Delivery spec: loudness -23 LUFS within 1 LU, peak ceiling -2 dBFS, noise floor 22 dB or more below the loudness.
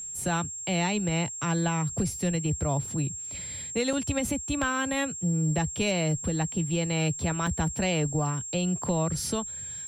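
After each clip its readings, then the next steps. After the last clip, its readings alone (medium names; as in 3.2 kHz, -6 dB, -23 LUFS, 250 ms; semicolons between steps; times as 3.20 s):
dropouts 2; longest dropout 3.5 ms; steady tone 7.5 kHz; tone level -35 dBFS; loudness -28.0 LUFS; peak level -16.5 dBFS; loudness target -23.0 LUFS
-> interpolate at 3.93/7.47 s, 3.5 ms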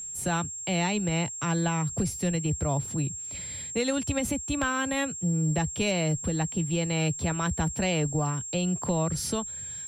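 dropouts 0; steady tone 7.5 kHz; tone level -35 dBFS
-> band-stop 7.5 kHz, Q 30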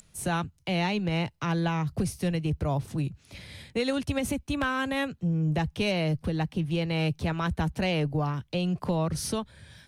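steady tone not found; loudness -29.0 LUFS; peak level -17.0 dBFS; loudness target -23.0 LUFS
-> trim +6 dB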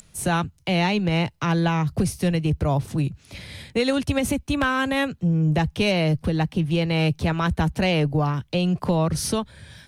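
loudness -23.0 LUFS; peak level -11.0 dBFS; noise floor -56 dBFS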